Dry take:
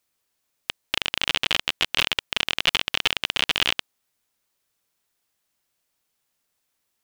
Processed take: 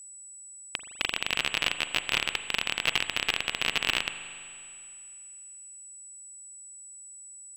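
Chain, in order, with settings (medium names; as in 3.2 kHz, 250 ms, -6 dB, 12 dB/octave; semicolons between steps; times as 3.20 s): whistle 8.5 kHz -39 dBFS; tape speed -7%; spring tank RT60 2.4 s, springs 40 ms, chirp 55 ms, DRR 9.5 dB; trim -5 dB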